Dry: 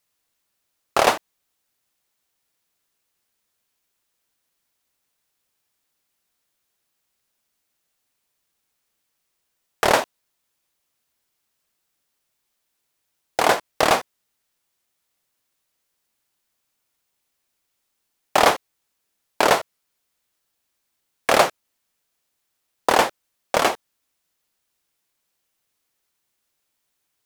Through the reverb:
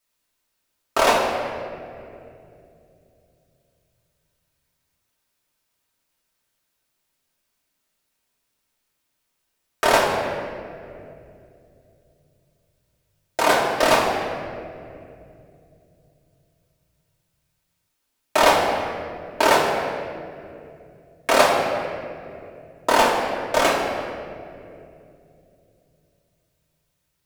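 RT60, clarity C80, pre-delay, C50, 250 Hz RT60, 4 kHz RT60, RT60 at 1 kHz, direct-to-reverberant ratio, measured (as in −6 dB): 2.6 s, 3.5 dB, 3 ms, 2.0 dB, 3.7 s, 1.4 s, 2.1 s, −6.0 dB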